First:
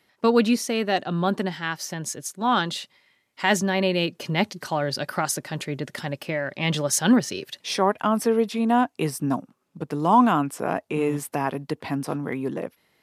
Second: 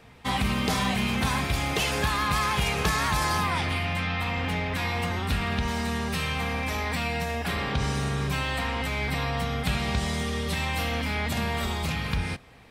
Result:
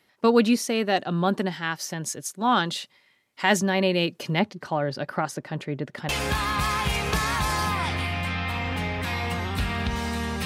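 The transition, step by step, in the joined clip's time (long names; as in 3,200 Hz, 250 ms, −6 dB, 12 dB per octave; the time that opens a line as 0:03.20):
first
0:04.39–0:06.09: low-pass filter 1,700 Hz 6 dB per octave
0:06.09: continue with second from 0:01.81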